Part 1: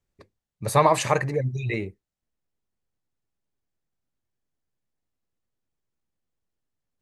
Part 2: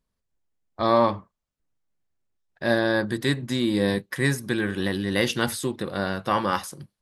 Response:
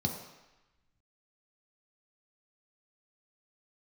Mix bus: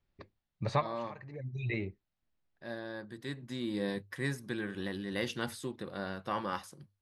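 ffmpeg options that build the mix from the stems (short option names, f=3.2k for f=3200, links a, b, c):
-filter_complex "[0:a]lowpass=f=4.6k:w=0.5412,lowpass=f=4.6k:w=1.3066,equalizer=f=460:t=o:w=0.31:g=-5.5,acompressor=threshold=-36dB:ratio=2,volume=1dB[a];[1:a]highshelf=f=8.6k:g=-7.5,bandreject=f=50:t=h:w=6,bandreject=f=100:t=h:w=6,volume=-11.5dB,afade=t=in:st=3.1:d=0.68:silence=0.398107,asplit=2[b][c];[c]apad=whole_len=309425[d];[a][d]sidechaincompress=threshold=-53dB:ratio=12:attack=29:release=516[e];[e][b]amix=inputs=2:normalize=0"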